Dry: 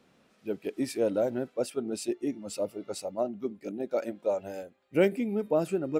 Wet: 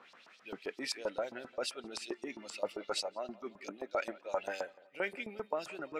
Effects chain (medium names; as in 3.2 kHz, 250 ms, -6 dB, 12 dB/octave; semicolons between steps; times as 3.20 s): reverse; compression 6:1, threshold -35 dBFS, peak gain reduction 16.5 dB; reverse; LFO band-pass saw up 7.6 Hz 970–5700 Hz; tape echo 172 ms, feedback 59%, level -20 dB, low-pass 1.5 kHz; trim +16 dB